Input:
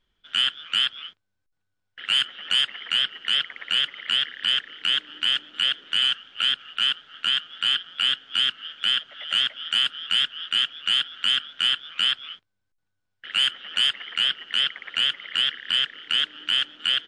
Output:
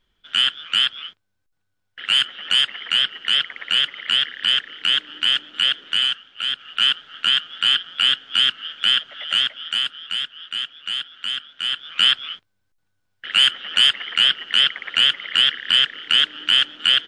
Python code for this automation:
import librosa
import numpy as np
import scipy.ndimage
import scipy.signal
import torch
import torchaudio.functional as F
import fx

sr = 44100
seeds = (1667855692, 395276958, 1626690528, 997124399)

y = fx.gain(x, sr, db=fx.line((5.88, 4.0), (6.39, -3.0), (6.8, 5.0), (9.16, 5.0), (10.27, -4.0), (11.59, -4.0), (12.02, 6.5)))